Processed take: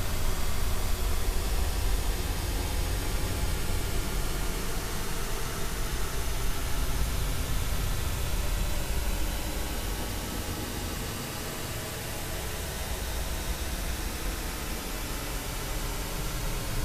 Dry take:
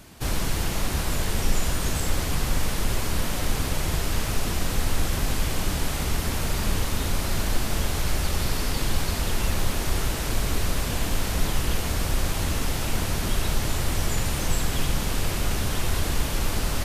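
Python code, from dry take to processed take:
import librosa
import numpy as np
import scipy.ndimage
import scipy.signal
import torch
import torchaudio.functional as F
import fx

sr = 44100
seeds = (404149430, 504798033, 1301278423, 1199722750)

y = fx.paulstretch(x, sr, seeds[0], factor=42.0, window_s=0.1, from_s=9.89)
y = F.gain(torch.from_numpy(y), -5.5).numpy()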